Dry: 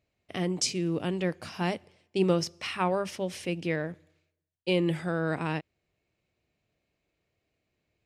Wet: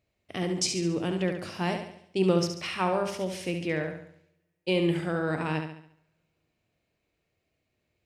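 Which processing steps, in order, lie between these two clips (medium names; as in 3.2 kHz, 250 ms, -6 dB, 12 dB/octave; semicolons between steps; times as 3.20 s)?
flutter echo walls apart 12 m, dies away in 0.62 s; two-slope reverb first 0.72 s, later 3.2 s, from -26 dB, DRR 19.5 dB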